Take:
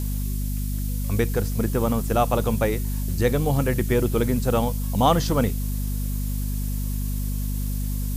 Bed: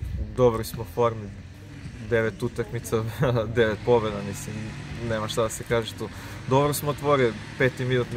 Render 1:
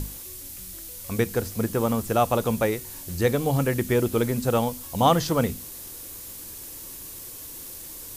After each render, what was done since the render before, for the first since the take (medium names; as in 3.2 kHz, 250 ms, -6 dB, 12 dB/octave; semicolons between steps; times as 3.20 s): hum notches 50/100/150/200/250 Hz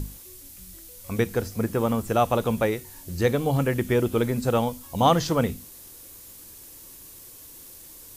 noise print and reduce 6 dB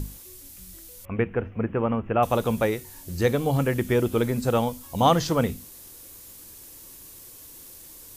1.05–2.23 s: elliptic low-pass 2.8 kHz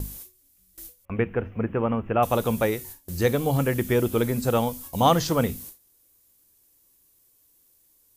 gate with hold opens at -32 dBFS; treble shelf 11 kHz +8.5 dB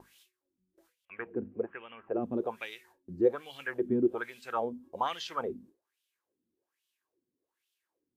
wah-wah 1.2 Hz 220–3200 Hz, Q 4.1; small resonant body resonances 370/1600 Hz, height 8 dB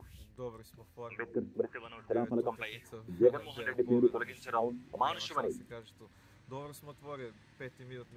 add bed -23.5 dB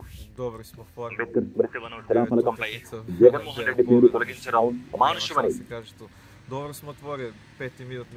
trim +11.5 dB